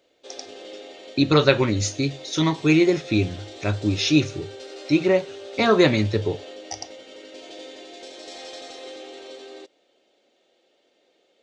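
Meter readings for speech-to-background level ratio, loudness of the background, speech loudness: 19.0 dB, -40.0 LUFS, -21.0 LUFS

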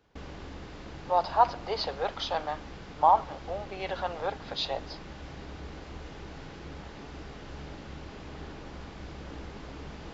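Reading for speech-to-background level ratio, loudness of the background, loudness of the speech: 15.0 dB, -44.5 LUFS, -29.5 LUFS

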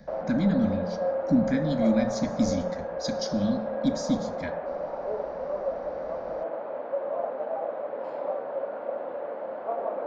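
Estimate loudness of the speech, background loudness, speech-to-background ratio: -28.0 LUFS, -32.0 LUFS, 4.0 dB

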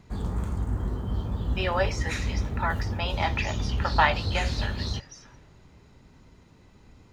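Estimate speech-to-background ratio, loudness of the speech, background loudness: 1.5 dB, -29.5 LUFS, -31.0 LUFS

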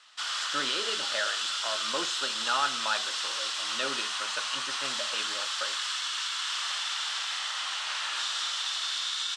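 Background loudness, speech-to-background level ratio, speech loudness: -30.0 LUFS, -4.5 dB, -34.5 LUFS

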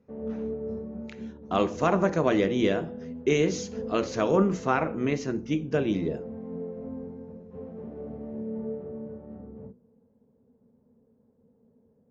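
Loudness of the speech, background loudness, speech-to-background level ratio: -26.5 LUFS, -38.5 LUFS, 12.0 dB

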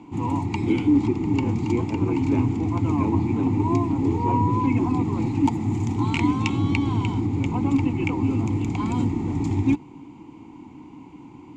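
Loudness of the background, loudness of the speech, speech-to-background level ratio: -24.0 LUFS, -28.0 LUFS, -4.0 dB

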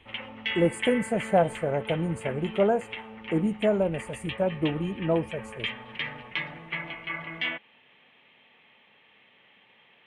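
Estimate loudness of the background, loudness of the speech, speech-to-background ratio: -35.5 LUFS, -27.5 LUFS, 8.0 dB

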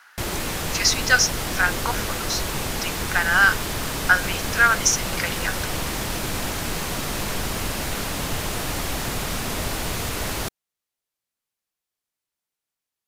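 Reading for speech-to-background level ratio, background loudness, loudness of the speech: 5.0 dB, -26.5 LUFS, -21.5 LUFS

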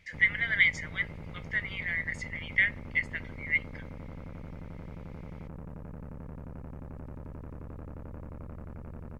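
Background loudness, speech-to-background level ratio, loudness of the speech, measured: -44.5 LUFS, 15.5 dB, -29.0 LUFS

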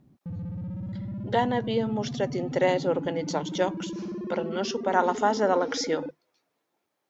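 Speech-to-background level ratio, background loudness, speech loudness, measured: 8.0 dB, -35.5 LUFS, -27.5 LUFS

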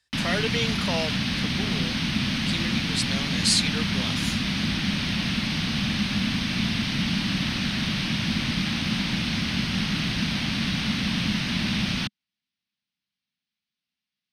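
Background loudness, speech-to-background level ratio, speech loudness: -25.5 LUFS, -3.0 dB, -28.5 LUFS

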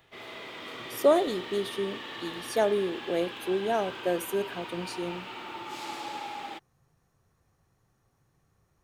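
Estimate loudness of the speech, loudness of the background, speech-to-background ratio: -29.5 LUFS, -39.5 LUFS, 10.0 dB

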